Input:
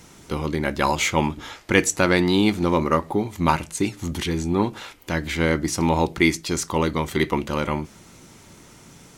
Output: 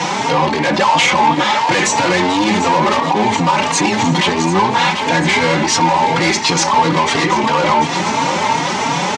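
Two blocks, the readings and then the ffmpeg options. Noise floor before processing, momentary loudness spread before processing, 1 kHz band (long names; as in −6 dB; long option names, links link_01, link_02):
−49 dBFS, 9 LU, +14.5 dB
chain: -filter_complex "[0:a]acrusher=bits=8:mix=0:aa=0.000001,aemphasis=mode=reproduction:type=50kf,asplit=2[link_01][link_02];[link_02]highpass=frequency=720:poles=1,volume=33dB,asoftclip=type=tanh:threshold=-2.5dB[link_03];[link_01][link_03]amix=inputs=2:normalize=0,lowpass=frequency=4900:poles=1,volume=-6dB,asoftclip=type=tanh:threshold=-11dB,acompressor=threshold=-23dB:ratio=2.5,highpass=frequency=110:width=0.5412,highpass=frequency=110:width=1.3066,equalizer=frequency=170:width_type=q:width=4:gain=3,equalizer=frequency=360:width_type=q:width=4:gain=-5,equalizer=frequency=880:width_type=q:width=4:gain=10,equalizer=frequency=1400:width_type=q:width=4:gain=-5,lowpass=frequency=7600:width=0.5412,lowpass=frequency=7600:width=1.3066,asplit=2[link_04][link_05];[link_05]aecho=0:1:741|1482|2223|2964|3705|4446:0.282|0.155|0.0853|0.0469|0.0258|0.0142[link_06];[link_04][link_06]amix=inputs=2:normalize=0,alimiter=level_in=13.5dB:limit=-1dB:release=50:level=0:latency=1,asplit=2[link_07][link_08];[link_08]adelay=3.7,afreqshift=2.9[link_09];[link_07][link_09]amix=inputs=2:normalize=1,volume=-1.5dB"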